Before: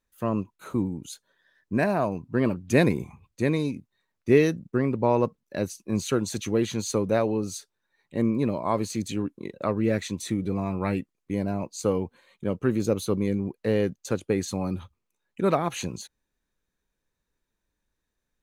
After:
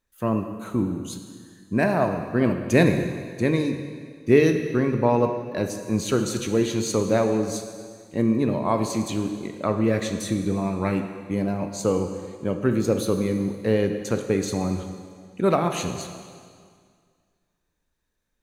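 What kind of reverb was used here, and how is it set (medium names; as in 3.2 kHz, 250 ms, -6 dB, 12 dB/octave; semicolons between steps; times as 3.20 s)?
plate-style reverb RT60 2 s, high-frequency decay 0.95×, DRR 5.5 dB; trim +2 dB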